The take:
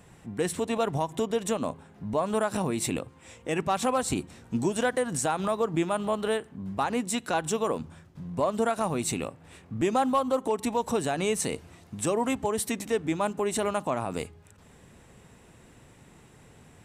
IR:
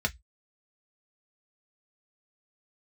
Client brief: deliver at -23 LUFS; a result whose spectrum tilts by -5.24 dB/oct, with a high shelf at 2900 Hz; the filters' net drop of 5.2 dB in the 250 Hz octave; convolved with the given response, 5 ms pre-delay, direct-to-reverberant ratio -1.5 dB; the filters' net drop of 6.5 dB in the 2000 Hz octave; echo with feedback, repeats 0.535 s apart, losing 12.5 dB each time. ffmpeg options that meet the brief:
-filter_complex "[0:a]equalizer=f=250:t=o:g=-6.5,equalizer=f=2k:t=o:g=-8,highshelf=f=2.9k:g=-3,aecho=1:1:535|1070|1605:0.237|0.0569|0.0137,asplit=2[a][b];[1:a]atrim=start_sample=2205,adelay=5[c];[b][c]afir=irnorm=-1:irlink=0,volume=-6dB[d];[a][d]amix=inputs=2:normalize=0,volume=4.5dB"

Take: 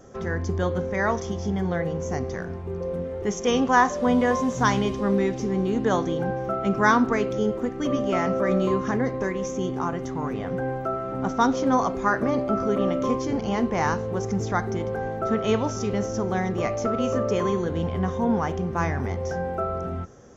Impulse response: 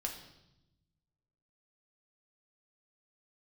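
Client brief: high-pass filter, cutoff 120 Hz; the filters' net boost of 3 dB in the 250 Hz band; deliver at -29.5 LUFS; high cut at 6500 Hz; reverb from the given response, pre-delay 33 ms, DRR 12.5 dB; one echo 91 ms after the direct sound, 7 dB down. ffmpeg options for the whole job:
-filter_complex "[0:a]highpass=120,lowpass=6.5k,equalizer=f=250:t=o:g=4,aecho=1:1:91:0.447,asplit=2[a][b];[1:a]atrim=start_sample=2205,adelay=33[c];[b][c]afir=irnorm=-1:irlink=0,volume=-13dB[d];[a][d]amix=inputs=2:normalize=0,volume=-6.5dB"

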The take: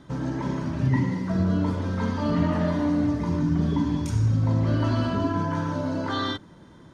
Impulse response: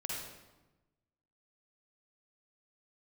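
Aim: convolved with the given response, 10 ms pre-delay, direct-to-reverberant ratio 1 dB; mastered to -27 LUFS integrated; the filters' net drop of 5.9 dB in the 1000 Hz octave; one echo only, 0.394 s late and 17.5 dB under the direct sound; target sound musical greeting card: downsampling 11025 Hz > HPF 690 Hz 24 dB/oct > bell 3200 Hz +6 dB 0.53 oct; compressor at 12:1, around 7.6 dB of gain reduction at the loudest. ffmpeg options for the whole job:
-filter_complex "[0:a]equalizer=f=1k:t=o:g=-6.5,acompressor=threshold=-26dB:ratio=12,aecho=1:1:394:0.133,asplit=2[a][b];[1:a]atrim=start_sample=2205,adelay=10[c];[b][c]afir=irnorm=-1:irlink=0,volume=-2.5dB[d];[a][d]amix=inputs=2:normalize=0,aresample=11025,aresample=44100,highpass=f=690:w=0.5412,highpass=f=690:w=1.3066,equalizer=f=3.2k:t=o:w=0.53:g=6,volume=12dB"

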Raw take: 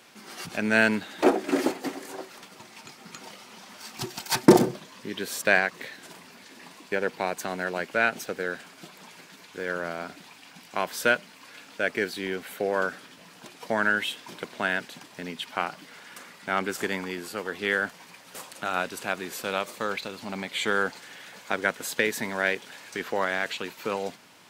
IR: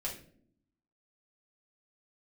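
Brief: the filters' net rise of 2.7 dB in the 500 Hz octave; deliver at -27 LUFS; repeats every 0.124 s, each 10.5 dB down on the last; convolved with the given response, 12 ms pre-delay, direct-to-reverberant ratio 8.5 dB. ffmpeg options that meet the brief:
-filter_complex "[0:a]equalizer=f=500:t=o:g=3.5,aecho=1:1:124|248|372:0.299|0.0896|0.0269,asplit=2[a][b];[1:a]atrim=start_sample=2205,adelay=12[c];[b][c]afir=irnorm=-1:irlink=0,volume=-10dB[d];[a][d]amix=inputs=2:normalize=0,volume=-1dB"

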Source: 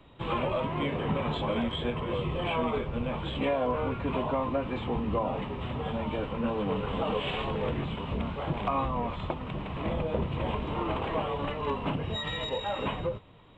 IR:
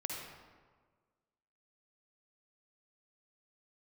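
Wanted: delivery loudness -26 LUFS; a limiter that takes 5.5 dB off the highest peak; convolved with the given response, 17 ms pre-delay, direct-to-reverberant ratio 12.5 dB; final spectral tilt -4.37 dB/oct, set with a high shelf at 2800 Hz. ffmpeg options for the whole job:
-filter_complex "[0:a]highshelf=f=2.8k:g=5,alimiter=limit=-21.5dB:level=0:latency=1,asplit=2[a][b];[1:a]atrim=start_sample=2205,adelay=17[c];[b][c]afir=irnorm=-1:irlink=0,volume=-14dB[d];[a][d]amix=inputs=2:normalize=0,volume=5.5dB"

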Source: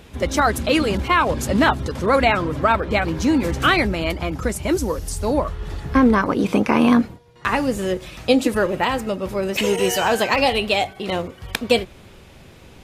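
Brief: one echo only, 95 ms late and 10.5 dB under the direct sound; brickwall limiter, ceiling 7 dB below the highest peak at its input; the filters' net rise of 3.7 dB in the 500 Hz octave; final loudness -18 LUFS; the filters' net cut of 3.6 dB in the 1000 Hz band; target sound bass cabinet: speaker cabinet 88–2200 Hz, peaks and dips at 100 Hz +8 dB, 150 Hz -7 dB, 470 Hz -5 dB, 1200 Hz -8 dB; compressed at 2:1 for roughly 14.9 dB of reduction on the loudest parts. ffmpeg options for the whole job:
-af "equalizer=f=500:t=o:g=9,equalizer=f=1k:t=o:g=-5.5,acompressor=threshold=-34dB:ratio=2,alimiter=limit=-19.5dB:level=0:latency=1,highpass=f=88:w=0.5412,highpass=f=88:w=1.3066,equalizer=f=100:t=q:w=4:g=8,equalizer=f=150:t=q:w=4:g=-7,equalizer=f=470:t=q:w=4:g=-5,equalizer=f=1.2k:t=q:w=4:g=-8,lowpass=f=2.2k:w=0.5412,lowpass=f=2.2k:w=1.3066,aecho=1:1:95:0.299,volume=14dB"

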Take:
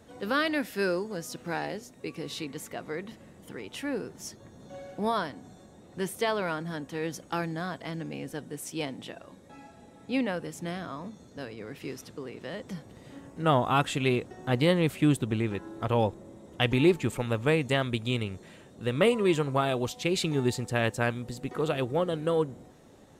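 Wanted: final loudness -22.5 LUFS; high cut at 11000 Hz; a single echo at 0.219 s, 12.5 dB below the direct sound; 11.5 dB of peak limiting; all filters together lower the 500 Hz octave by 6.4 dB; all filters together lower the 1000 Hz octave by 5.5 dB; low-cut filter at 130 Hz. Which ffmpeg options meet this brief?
-af "highpass=130,lowpass=11k,equalizer=f=500:t=o:g=-7,equalizer=f=1k:t=o:g=-5,alimiter=limit=-22dB:level=0:latency=1,aecho=1:1:219:0.237,volume=13dB"

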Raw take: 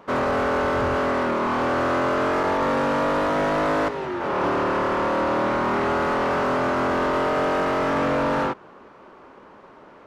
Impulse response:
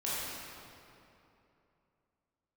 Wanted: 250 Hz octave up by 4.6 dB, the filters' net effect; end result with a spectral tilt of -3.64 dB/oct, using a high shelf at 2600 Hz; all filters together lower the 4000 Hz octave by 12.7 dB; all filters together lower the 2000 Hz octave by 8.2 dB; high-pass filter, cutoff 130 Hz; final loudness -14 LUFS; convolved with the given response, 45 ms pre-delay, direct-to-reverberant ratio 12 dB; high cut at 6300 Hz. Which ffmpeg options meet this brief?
-filter_complex "[0:a]highpass=130,lowpass=6.3k,equalizer=f=250:t=o:g=6,equalizer=f=2k:t=o:g=-8,highshelf=f=2.6k:g=-5.5,equalizer=f=4k:t=o:g=-9,asplit=2[a][b];[1:a]atrim=start_sample=2205,adelay=45[c];[b][c]afir=irnorm=-1:irlink=0,volume=-18.5dB[d];[a][d]amix=inputs=2:normalize=0,volume=8dB"

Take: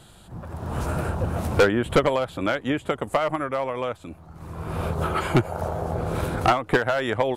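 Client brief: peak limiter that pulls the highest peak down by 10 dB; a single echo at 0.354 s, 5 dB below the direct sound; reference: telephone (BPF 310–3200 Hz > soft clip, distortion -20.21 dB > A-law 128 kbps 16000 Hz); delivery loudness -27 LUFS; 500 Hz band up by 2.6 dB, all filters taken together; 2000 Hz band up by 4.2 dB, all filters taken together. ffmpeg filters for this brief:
-af "equalizer=f=500:t=o:g=3.5,equalizer=f=2k:t=o:g=6,alimiter=limit=-15dB:level=0:latency=1,highpass=310,lowpass=3.2k,aecho=1:1:354:0.562,asoftclip=threshold=-15dB,volume=0.5dB" -ar 16000 -c:a pcm_alaw

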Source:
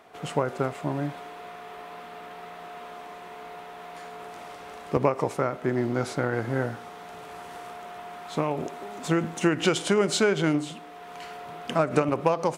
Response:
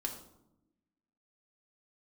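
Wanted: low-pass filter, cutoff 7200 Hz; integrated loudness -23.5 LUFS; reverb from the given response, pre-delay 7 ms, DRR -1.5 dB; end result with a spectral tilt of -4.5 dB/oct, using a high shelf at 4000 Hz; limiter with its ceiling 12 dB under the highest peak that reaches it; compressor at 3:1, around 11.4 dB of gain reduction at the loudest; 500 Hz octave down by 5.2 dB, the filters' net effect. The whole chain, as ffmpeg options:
-filter_complex "[0:a]lowpass=7.2k,equalizer=f=500:t=o:g=-7,highshelf=f=4k:g=7.5,acompressor=threshold=-36dB:ratio=3,alimiter=level_in=6dB:limit=-24dB:level=0:latency=1,volume=-6dB,asplit=2[a][b];[1:a]atrim=start_sample=2205,adelay=7[c];[b][c]afir=irnorm=-1:irlink=0,volume=1dB[d];[a][d]amix=inputs=2:normalize=0,volume=12.5dB"

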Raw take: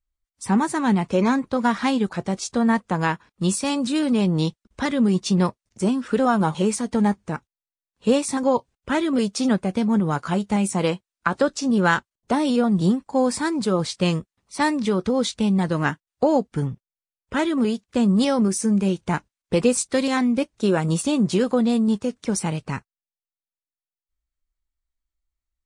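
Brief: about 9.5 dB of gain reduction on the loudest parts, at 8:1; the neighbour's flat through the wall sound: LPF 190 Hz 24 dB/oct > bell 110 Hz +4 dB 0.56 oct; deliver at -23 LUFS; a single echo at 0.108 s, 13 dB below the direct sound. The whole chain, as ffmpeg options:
-af "acompressor=threshold=-24dB:ratio=8,lowpass=f=190:w=0.5412,lowpass=f=190:w=1.3066,equalizer=f=110:t=o:w=0.56:g=4,aecho=1:1:108:0.224,volume=12.5dB"

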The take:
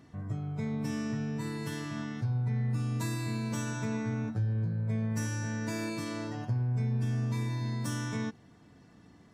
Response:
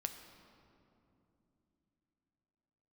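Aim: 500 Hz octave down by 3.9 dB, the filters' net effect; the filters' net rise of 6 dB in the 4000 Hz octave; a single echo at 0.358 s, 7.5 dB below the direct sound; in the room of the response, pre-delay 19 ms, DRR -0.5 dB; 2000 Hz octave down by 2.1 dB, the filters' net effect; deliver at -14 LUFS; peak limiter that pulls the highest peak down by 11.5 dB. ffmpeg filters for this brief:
-filter_complex "[0:a]equalizer=f=500:t=o:g=-5,equalizer=f=2k:t=o:g=-4.5,equalizer=f=4k:t=o:g=8.5,alimiter=level_in=9.5dB:limit=-24dB:level=0:latency=1,volume=-9.5dB,aecho=1:1:358:0.422,asplit=2[a][b];[1:a]atrim=start_sample=2205,adelay=19[c];[b][c]afir=irnorm=-1:irlink=0,volume=1.5dB[d];[a][d]amix=inputs=2:normalize=0,volume=22.5dB"

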